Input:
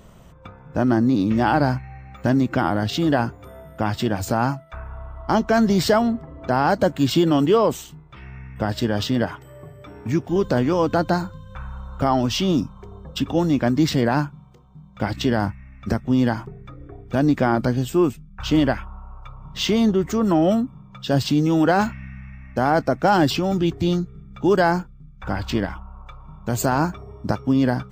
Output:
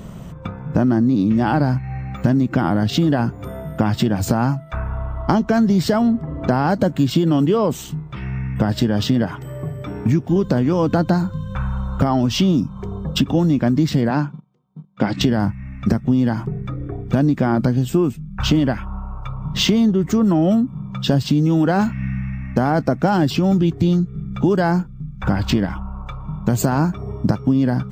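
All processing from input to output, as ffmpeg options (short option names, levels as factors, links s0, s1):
-filter_complex "[0:a]asettb=1/sr,asplit=3[s0][s1][s2];[s0]atrim=end=14.104[s3];[s1]atrim=start=14.1:end=15.21,asetpts=PTS-STARTPTS,afade=t=in:d=0.004:c=qsin,afade=t=out:st=1.106:d=0.004:c=qsin,agate=range=0.0631:threshold=0.00794:ratio=16:release=100:detection=peak,highpass=180,lowpass=6000[s4];[s2]atrim=start=15.206[s5];[s3][s4]acrossfade=d=0.004:c1=hsin:c2=qsin[s6];[s6][s5]acrossfade=d=0.004:c1=qsin:c2=hsin,equalizer=f=170:t=o:w=1.7:g=9,acompressor=threshold=0.0794:ratio=5,volume=2.37"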